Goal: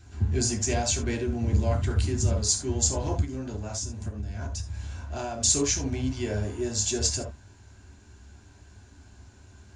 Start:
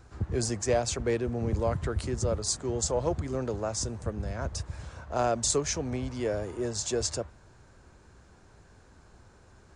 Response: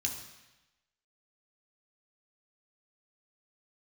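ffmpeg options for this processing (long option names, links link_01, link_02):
-filter_complex "[1:a]atrim=start_sample=2205,atrim=end_sample=3969[link_01];[0:a][link_01]afir=irnorm=-1:irlink=0,asplit=3[link_02][link_03][link_04];[link_02]afade=type=out:start_time=3.24:duration=0.02[link_05];[link_03]acompressor=threshold=-30dB:ratio=6,afade=type=in:start_time=3.24:duration=0.02,afade=type=out:start_time=5.4:duration=0.02[link_06];[link_04]afade=type=in:start_time=5.4:duration=0.02[link_07];[link_05][link_06][link_07]amix=inputs=3:normalize=0"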